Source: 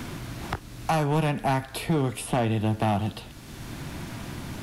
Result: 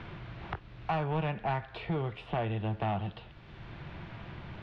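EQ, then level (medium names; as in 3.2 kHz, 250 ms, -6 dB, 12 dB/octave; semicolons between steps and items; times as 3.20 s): low-pass 3.3 kHz 24 dB/octave; peaking EQ 260 Hz -14.5 dB 0.33 oct; -6.5 dB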